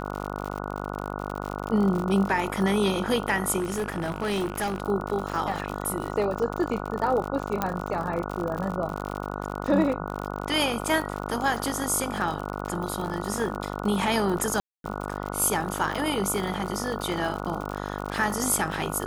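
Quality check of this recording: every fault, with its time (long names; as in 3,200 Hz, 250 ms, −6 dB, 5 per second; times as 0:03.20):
mains buzz 50 Hz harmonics 29 −33 dBFS
surface crackle 71 per second −30 dBFS
0:03.58–0:04.82: clipping −23.5 dBFS
0:07.62: click −10 dBFS
0:14.60–0:14.84: drop-out 242 ms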